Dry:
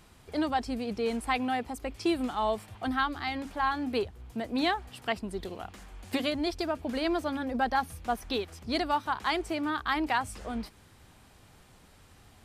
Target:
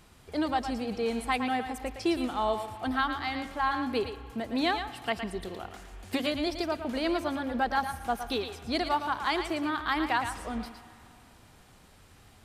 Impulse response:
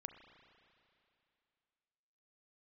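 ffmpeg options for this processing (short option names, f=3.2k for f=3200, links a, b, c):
-filter_complex "[0:a]asplit=2[a][b];[1:a]atrim=start_sample=2205,lowshelf=f=340:g=-11.5,adelay=113[c];[b][c]afir=irnorm=-1:irlink=0,volume=-1.5dB[d];[a][d]amix=inputs=2:normalize=0"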